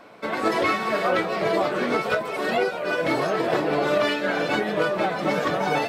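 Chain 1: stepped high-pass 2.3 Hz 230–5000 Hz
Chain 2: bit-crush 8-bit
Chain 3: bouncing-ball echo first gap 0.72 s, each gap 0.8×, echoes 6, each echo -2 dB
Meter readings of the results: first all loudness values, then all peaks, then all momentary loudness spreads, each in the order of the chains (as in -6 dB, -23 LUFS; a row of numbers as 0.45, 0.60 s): -20.5, -23.5, -20.0 LUFS; -4.5, -10.5, -6.0 dBFS; 9, 3, 4 LU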